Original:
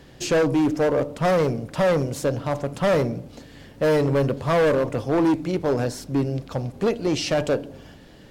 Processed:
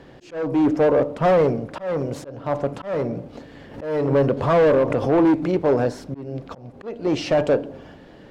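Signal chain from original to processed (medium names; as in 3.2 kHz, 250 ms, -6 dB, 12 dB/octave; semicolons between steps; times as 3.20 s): slow attack 365 ms; bass shelf 210 Hz -10.5 dB; hard clipper -19 dBFS, distortion -16 dB; low-pass 1.1 kHz 6 dB/octave; 3.35–5.63 s: swell ahead of each attack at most 89 dB/s; trim +7.5 dB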